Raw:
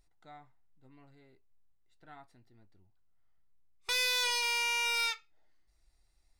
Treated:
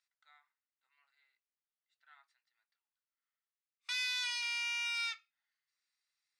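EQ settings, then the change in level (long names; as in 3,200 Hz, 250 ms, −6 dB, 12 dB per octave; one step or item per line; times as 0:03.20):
high-pass filter 1,300 Hz 24 dB per octave
high-frequency loss of the air 63 metres
−3.5 dB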